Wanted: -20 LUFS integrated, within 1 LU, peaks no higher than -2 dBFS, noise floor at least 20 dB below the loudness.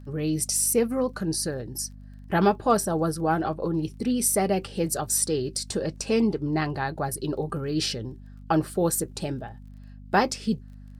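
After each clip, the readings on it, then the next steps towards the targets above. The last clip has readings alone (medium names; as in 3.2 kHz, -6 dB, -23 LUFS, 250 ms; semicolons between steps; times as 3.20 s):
tick rate 22 per s; hum 50 Hz; highest harmonic 250 Hz; hum level -41 dBFS; loudness -26.0 LUFS; peak level -6.5 dBFS; loudness target -20.0 LUFS
-> de-click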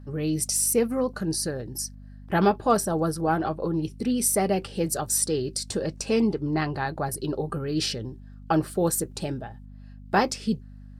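tick rate 0 per s; hum 50 Hz; highest harmonic 250 Hz; hum level -41 dBFS
-> de-hum 50 Hz, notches 5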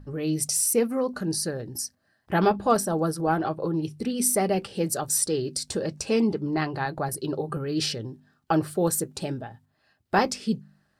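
hum not found; loudness -26.0 LUFS; peak level -7.0 dBFS; loudness target -20.0 LUFS
-> trim +6 dB; peak limiter -2 dBFS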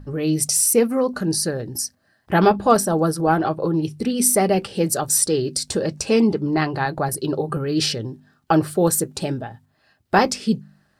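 loudness -20.0 LUFS; peak level -2.0 dBFS; noise floor -65 dBFS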